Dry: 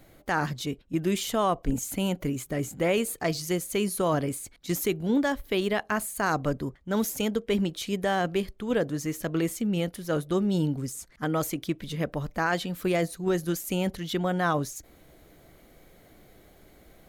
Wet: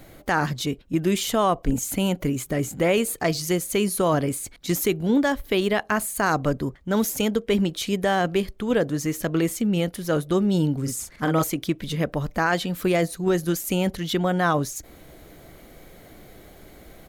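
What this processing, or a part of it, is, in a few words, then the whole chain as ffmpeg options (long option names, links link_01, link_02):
parallel compression: -filter_complex "[0:a]asplit=3[link_01][link_02][link_03];[link_01]afade=type=out:start_time=10.85:duration=0.02[link_04];[link_02]asplit=2[link_05][link_06];[link_06]adelay=43,volume=-4dB[link_07];[link_05][link_07]amix=inputs=2:normalize=0,afade=type=in:start_time=10.85:duration=0.02,afade=type=out:start_time=11.42:duration=0.02[link_08];[link_03]afade=type=in:start_time=11.42:duration=0.02[link_09];[link_04][link_08][link_09]amix=inputs=3:normalize=0,asplit=2[link_10][link_11];[link_11]acompressor=threshold=-37dB:ratio=6,volume=-2dB[link_12];[link_10][link_12]amix=inputs=2:normalize=0,volume=3dB"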